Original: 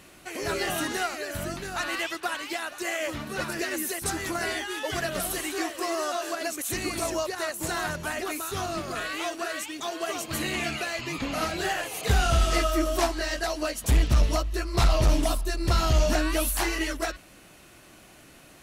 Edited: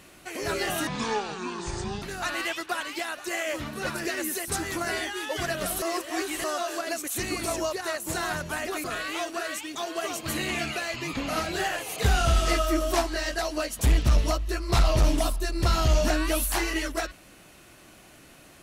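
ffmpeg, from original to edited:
ffmpeg -i in.wav -filter_complex "[0:a]asplit=6[link_01][link_02][link_03][link_04][link_05][link_06];[link_01]atrim=end=0.874[link_07];[link_02]atrim=start=0.87:end=1.56,asetpts=PTS-STARTPTS,asetrate=26460,aresample=44100[link_08];[link_03]atrim=start=1.556:end=5.362[link_09];[link_04]atrim=start=5.358:end=5.982,asetpts=PTS-STARTPTS,areverse[link_10];[link_05]atrim=start=5.978:end=8.382[link_11];[link_06]atrim=start=8.888[link_12];[link_07][link_08]acrossfade=duration=0.004:curve1=hsin:curve2=hsin[link_13];[link_13][link_09]acrossfade=duration=0.004:curve1=hsin:curve2=hsin[link_14];[link_14][link_10]acrossfade=duration=0.004:curve1=hsin:curve2=hsin[link_15];[link_15][link_11]acrossfade=duration=0.004:curve1=hsin:curve2=hsin[link_16];[link_16][link_12]acrossfade=duration=0.004:curve1=hsin:curve2=hsin" out.wav

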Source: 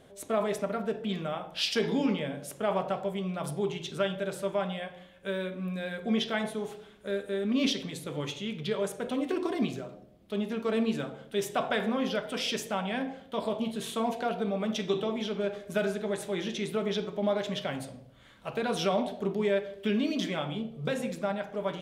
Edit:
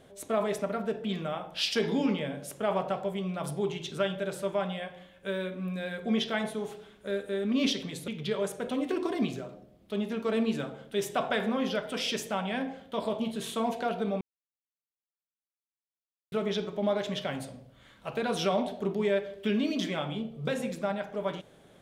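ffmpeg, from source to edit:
ffmpeg -i in.wav -filter_complex "[0:a]asplit=4[link_01][link_02][link_03][link_04];[link_01]atrim=end=8.082[link_05];[link_02]atrim=start=8.478:end=14.61,asetpts=PTS-STARTPTS,afade=type=out:start_time=6.128:duration=0.004:curve=hsin[link_06];[link_03]atrim=start=14.61:end=16.72,asetpts=PTS-STARTPTS,volume=0[link_07];[link_04]atrim=start=16.72,asetpts=PTS-STARTPTS,afade=type=in:duration=0.004:curve=hsin[link_08];[link_06][link_07][link_08]concat=n=3:v=0:a=1[link_09];[link_05][link_09]acrossfade=duration=0.004:curve1=hsin:curve2=hsin" out.wav

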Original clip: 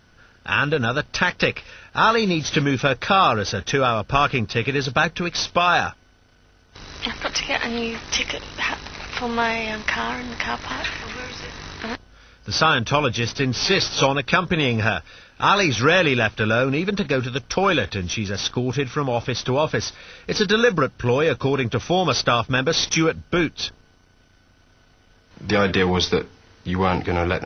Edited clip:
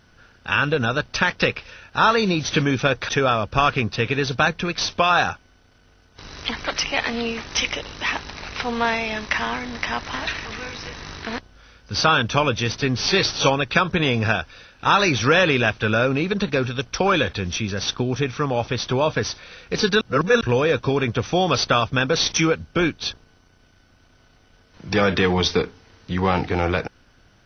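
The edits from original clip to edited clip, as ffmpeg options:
ffmpeg -i in.wav -filter_complex "[0:a]asplit=4[link_01][link_02][link_03][link_04];[link_01]atrim=end=3.092[link_05];[link_02]atrim=start=3.658:end=20.582[link_06];[link_03]atrim=start=20.578:end=20.982,asetpts=PTS-STARTPTS,areverse[link_07];[link_04]atrim=start=20.978[link_08];[link_05][link_06]acrossfade=duration=0.004:curve1=hsin:curve2=hsin[link_09];[link_09][link_07]acrossfade=duration=0.004:curve1=hsin:curve2=hsin[link_10];[link_10][link_08]acrossfade=duration=0.004:curve1=hsin:curve2=hsin" out.wav

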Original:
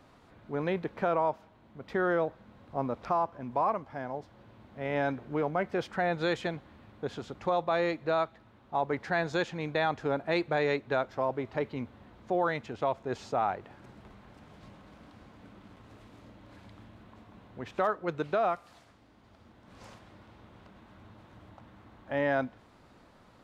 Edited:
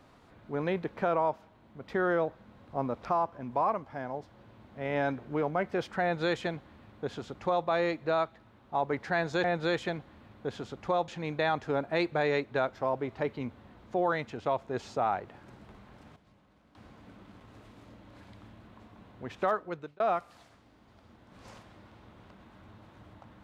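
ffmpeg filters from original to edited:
ffmpeg -i in.wav -filter_complex "[0:a]asplit=6[link_01][link_02][link_03][link_04][link_05][link_06];[link_01]atrim=end=9.442[link_07];[link_02]atrim=start=6.018:end=7.662[link_08];[link_03]atrim=start=9.438:end=14.522[link_09];[link_04]atrim=start=14.518:end=15.112,asetpts=PTS-STARTPTS,volume=-11.5dB[link_10];[link_05]atrim=start=15.108:end=18.36,asetpts=PTS-STARTPTS,afade=type=out:start_time=2.772:duration=0.48[link_11];[link_06]atrim=start=18.36,asetpts=PTS-STARTPTS,afade=type=in:duration=0.004:curve=hsin[link_12];[link_07][link_08]acrossfade=duration=0.004:curve1=hsin:curve2=hsin[link_13];[link_13][link_09]acrossfade=duration=0.004:curve1=hsin:curve2=hsin[link_14];[link_14][link_10]acrossfade=duration=0.004:curve1=hsin:curve2=hsin[link_15];[link_11][link_12]concat=n=2:v=0:a=1[link_16];[link_15][link_16]acrossfade=duration=0.004:curve1=hsin:curve2=hsin" out.wav

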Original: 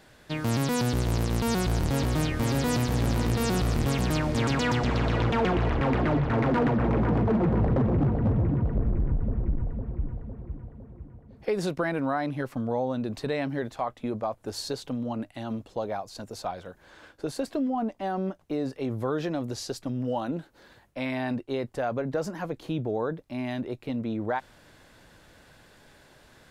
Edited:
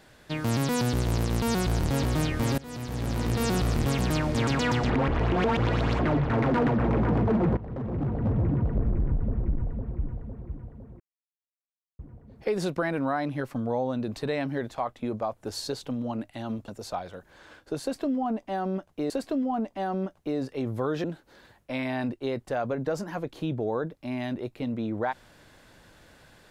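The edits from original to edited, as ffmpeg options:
ffmpeg -i in.wav -filter_complex "[0:a]asplit=9[link_01][link_02][link_03][link_04][link_05][link_06][link_07][link_08][link_09];[link_01]atrim=end=2.58,asetpts=PTS-STARTPTS,afade=type=out:start_time=2.576:duration=0.004:curve=hsin:silence=0.0794328[link_10];[link_02]atrim=start=2.58:end=4.902,asetpts=PTS-STARTPTS,afade=type=in:duration=0.85:silence=0.0794328[link_11];[link_03]atrim=start=4.898:end=5.992,asetpts=PTS-STARTPTS,areverse[link_12];[link_04]atrim=start=5.988:end=7.57,asetpts=PTS-STARTPTS,afade=type=out:start_time=1.578:duration=0.004:curve=hsin:silence=0.105925[link_13];[link_05]atrim=start=7.57:end=11,asetpts=PTS-STARTPTS,afade=type=in:duration=0.91:silence=0.105925,afade=type=out:start_time=3.426:duration=0.004:curve=hsin,apad=pad_dur=0.99[link_14];[link_06]atrim=start=11:end=15.692,asetpts=PTS-STARTPTS,afade=type=in:duration=0.004:curve=hsin[link_15];[link_07]atrim=start=16.198:end=18.622[link_16];[link_08]atrim=start=17.338:end=19.282[link_17];[link_09]atrim=start=20.308[link_18];[link_10][link_11]concat=n=2:v=0:a=1[link_19];[link_19][link_12]acrossfade=duration=0.004:curve1=hsin:curve2=hsin[link_20];[link_13][link_14][link_15]concat=n=3:v=0:a=1[link_21];[link_20][link_21]acrossfade=duration=0.004:curve1=hsin:curve2=hsin[link_22];[link_22][link_16]acrossfade=duration=0.004:curve1=hsin:curve2=hsin[link_23];[link_23][link_17]acrossfade=duration=0.004:curve1=hsin:curve2=hsin[link_24];[link_24][link_18]acrossfade=duration=0.004:curve1=hsin:curve2=hsin" out.wav

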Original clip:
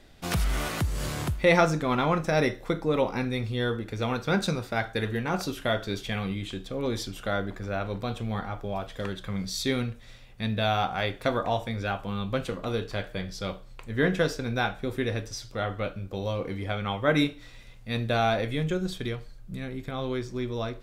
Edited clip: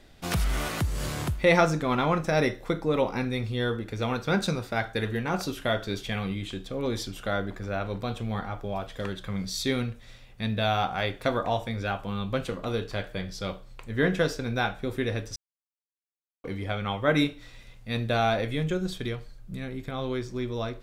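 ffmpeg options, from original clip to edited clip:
ffmpeg -i in.wav -filter_complex "[0:a]asplit=3[link_01][link_02][link_03];[link_01]atrim=end=15.36,asetpts=PTS-STARTPTS,afade=type=out:start_time=15.356:duration=0.004:curve=hsin[link_04];[link_02]atrim=start=15.36:end=16.44,asetpts=PTS-STARTPTS,volume=0[link_05];[link_03]atrim=start=16.44,asetpts=PTS-STARTPTS,afade=type=in:duration=0.004:curve=hsin[link_06];[link_04][link_05][link_06]concat=n=3:v=0:a=1" out.wav

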